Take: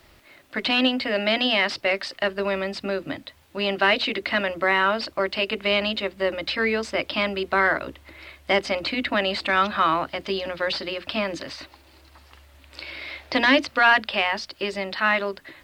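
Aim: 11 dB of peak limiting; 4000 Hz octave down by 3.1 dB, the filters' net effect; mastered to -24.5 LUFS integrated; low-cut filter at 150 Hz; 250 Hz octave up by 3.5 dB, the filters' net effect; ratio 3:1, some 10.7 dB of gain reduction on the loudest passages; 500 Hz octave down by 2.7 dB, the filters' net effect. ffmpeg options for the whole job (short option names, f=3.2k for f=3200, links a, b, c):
-af "highpass=150,equalizer=f=250:t=o:g=6,equalizer=f=500:t=o:g=-5,equalizer=f=4k:t=o:g=-4.5,acompressor=threshold=-28dB:ratio=3,volume=10dB,alimiter=limit=-14dB:level=0:latency=1"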